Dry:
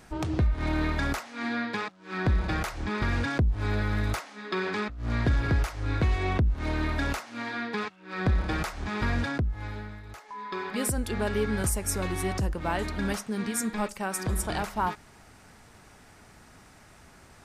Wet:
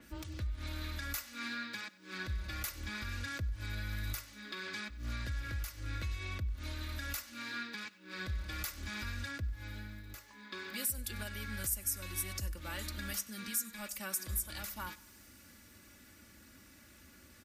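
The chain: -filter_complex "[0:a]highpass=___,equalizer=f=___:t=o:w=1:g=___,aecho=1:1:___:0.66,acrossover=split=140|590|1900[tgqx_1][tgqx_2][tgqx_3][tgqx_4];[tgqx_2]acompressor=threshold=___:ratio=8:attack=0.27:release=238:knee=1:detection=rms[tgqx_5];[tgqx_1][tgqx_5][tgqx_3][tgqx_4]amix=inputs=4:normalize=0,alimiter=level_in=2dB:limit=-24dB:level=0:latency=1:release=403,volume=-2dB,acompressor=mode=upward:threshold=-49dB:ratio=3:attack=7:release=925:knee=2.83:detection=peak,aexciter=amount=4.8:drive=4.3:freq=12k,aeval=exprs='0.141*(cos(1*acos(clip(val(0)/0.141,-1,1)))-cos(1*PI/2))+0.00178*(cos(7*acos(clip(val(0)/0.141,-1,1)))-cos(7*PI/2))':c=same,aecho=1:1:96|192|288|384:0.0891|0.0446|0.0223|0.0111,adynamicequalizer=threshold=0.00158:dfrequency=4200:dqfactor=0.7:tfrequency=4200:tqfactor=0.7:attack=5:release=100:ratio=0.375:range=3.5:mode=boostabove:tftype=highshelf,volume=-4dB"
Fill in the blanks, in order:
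60, 820, -14.5, 3.5, -44dB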